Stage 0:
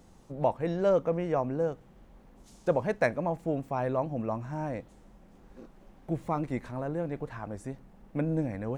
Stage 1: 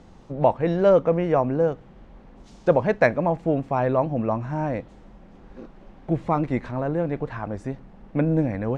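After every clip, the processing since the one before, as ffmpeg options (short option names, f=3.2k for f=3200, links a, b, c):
-af "lowpass=4.4k,volume=8dB"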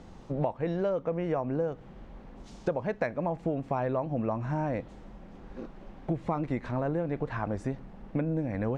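-af "acompressor=threshold=-26dB:ratio=10"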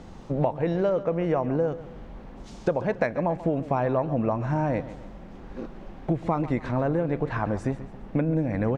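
-af "aecho=1:1:138|276|414|552:0.178|0.0694|0.027|0.0105,volume=5dB"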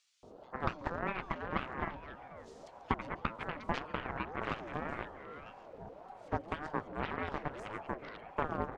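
-filter_complex "[0:a]acrossover=split=890|2700[a][b][c];[a]adelay=230[d];[b]adelay=720[e];[d][e][c]amix=inputs=3:normalize=0,aeval=exprs='0.282*(cos(1*acos(clip(val(0)/0.282,-1,1)))-cos(1*PI/2))+0.0447*(cos(3*acos(clip(val(0)/0.282,-1,1)))-cos(3*PI/2))+0.0447*(cos(7*acos(clip(val(0)/0.282,-1,1)))-cos(7*PI/2))':c=same,aeval=exprs='val(0)*sin(2*PI*600*n/s+600*0.3/1.8*sin(2*PI*1.8*n/s))':c=same,volume=-3dB"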